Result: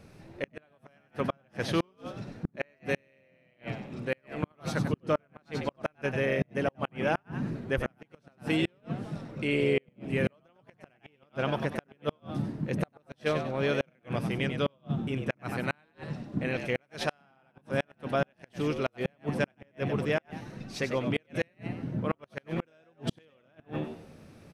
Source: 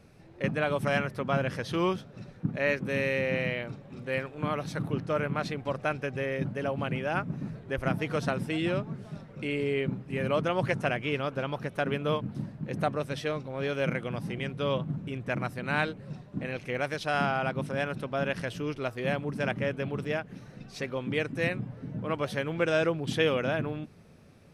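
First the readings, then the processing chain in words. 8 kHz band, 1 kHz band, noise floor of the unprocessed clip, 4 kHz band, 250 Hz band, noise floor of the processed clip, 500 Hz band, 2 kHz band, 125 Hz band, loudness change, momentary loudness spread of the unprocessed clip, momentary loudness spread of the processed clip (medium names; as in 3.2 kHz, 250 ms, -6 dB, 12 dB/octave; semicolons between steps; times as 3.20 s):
-1.0 dB, -4.5 dB, -51 dBFS, -2.5 dB, -0.5 dB, -68 dBFS, -2.5 dB, -4.0 dB, -2.0 dB, -2.0 dB, 9 LU, 10 LU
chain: frequency-shifting echo 96 ms, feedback 32%, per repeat +79 Hz, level -8 dB; inverted gate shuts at -19 dBFS, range -39 dB; trim +3 dB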